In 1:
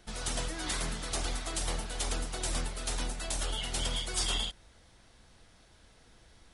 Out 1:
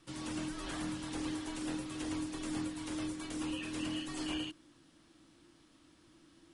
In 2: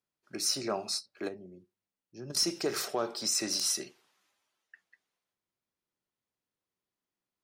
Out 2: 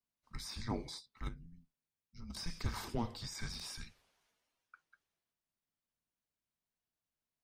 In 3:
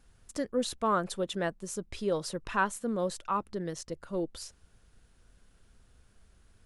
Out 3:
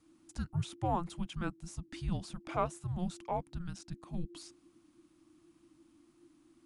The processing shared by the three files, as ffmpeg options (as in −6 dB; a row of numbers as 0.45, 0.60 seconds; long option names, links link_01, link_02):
-filter_complex "[0:a]afreqshift=-350,acrossover=split=2500[link_01][link_02];[link_02]acompressor=threshold=-42dB:ratio=4:attack=1:release=60[link_03];[link_01][link_03]amix=inputs=2:normalize=0,volume=-4.5dB"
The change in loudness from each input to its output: −5.5, −12.0, −6.0 LU